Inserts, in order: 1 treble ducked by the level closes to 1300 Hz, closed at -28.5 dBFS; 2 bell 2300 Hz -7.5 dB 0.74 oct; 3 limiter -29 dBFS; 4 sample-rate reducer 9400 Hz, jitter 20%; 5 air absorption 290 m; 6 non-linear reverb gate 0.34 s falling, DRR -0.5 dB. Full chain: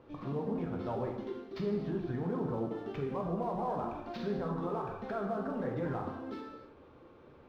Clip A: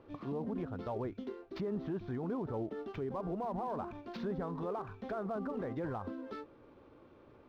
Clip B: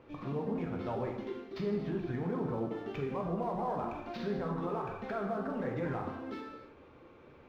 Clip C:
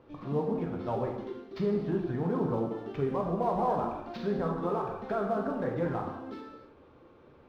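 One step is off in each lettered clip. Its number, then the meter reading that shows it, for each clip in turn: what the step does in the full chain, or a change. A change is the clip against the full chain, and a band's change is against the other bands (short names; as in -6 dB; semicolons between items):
6, crest factor change -3.0 dB; 2, 2 kHz band +3.0 dB; 3, mean gain reduction 2.0 dB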